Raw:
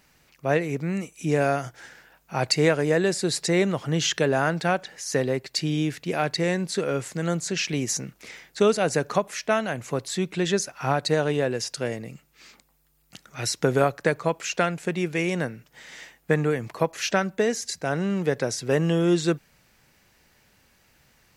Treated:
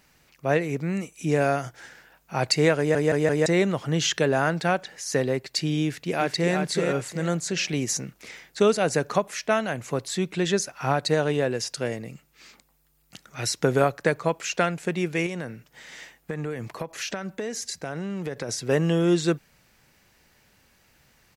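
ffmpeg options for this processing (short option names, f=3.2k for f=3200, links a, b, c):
-filter_complex "[0:a]asplit=2[a][b];[b]afade=t=in:st=5.83:d=0.01,afade=t=out:st=6.55:d=0.01,aecho=0:1:370|740|1110|1480:0.562341|0.168702|0.0506107|0.0151832[c];[a][c]amix=inputs=2:normalize=0,asettb=1/sr,asplit=3[d][e][f];[d]atrim=end=15.264[g];[e]atrim=start=15.26:end=18.49,asetpts=PTS-STARTPTS,afade=t=in:d=0.004:c=qsin,afade=t=out:st=3.226:d=0.004:c=qsin,acompressor=threshold=-27dB:ratio=6:attack=3.2:release=140:knee=1:detection=peak[h];[f]atrim=start=18.486[i];[g][h]acrossfade=d=0.004:c1=hsin:c2=qsin[j];[j][i]acrossfade=d=0.004:c1=qsin:c2=hsin,asplit=5[k][l][m][n][o];[k]atrim=end=2.952[p];[l]atrim=start=2.778:end=2.952[q];[m]atrim=start=2.778:end=2.952[r];[n]atrim=start=2.778:end=2.952[s];[o]atrim=start=3.458[t];[p][q]acrossfade=d=0.004:c1=hsin:c2=hsin[u];[u][r]acrossfade=d=0.004:c1=hsin:c2=hsin[v];[v][s]acrossfade=d=0.004:c1=hsin:c2=hsin[w];[w][t]acrossfade=d=0.004:c1=hsin:c2=hsin"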